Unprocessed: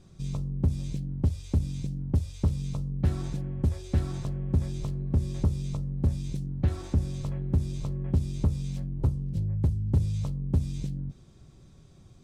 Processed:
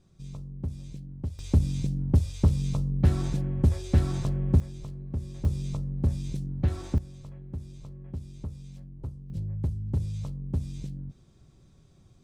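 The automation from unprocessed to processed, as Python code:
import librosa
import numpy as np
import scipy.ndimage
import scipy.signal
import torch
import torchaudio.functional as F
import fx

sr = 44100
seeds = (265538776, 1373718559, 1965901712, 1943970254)

y = fx.gain(x, sr, db=fx.steps((0.0, -8.0), (1.39, 4.0), (4.6, -7.0), (5.45, 0.0), (6.98, -11.5), (9.3, -4.0)))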